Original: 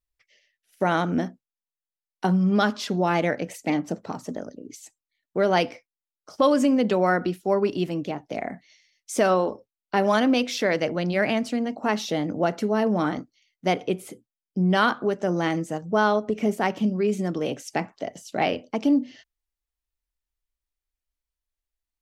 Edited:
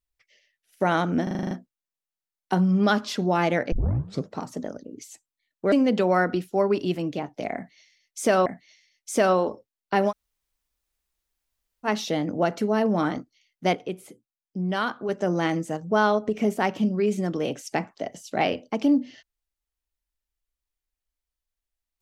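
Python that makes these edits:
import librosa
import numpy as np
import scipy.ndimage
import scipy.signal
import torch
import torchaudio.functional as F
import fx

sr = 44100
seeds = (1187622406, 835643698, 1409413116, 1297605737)

y = fx.edit(x, sr, fx.stutter(start_s=1.23, slice_s=0.04, count=8),
    fx.tape_start(start_s=3.44, length_s=0.59),
    fx.cut(start_s=5.44, length_s=1.2),
    fx.repeat(start_s=8.47, length_s=0.91, count=2),
    fx.room_tone_fill(start_s=10.11, length_s=1.76, crossfade_s=0.06),
    fx.clip_gain(start_s=13.76, length_s=1.34, db=-6.0), tone=tone)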